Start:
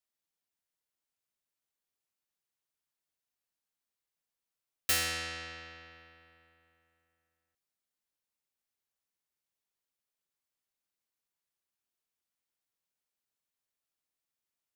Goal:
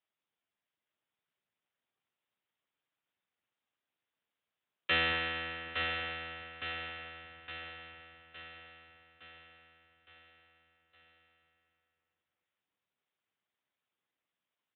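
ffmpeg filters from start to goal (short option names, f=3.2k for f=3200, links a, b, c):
-af "acontrast=28,aecho=1:1:863|1726|2589|3452|4315|5178|6041:0.562|0.309|0.17|0.0936|0.0515|0.0283|0.0156" -ar 8000 -c:a libspeex -b:a 11k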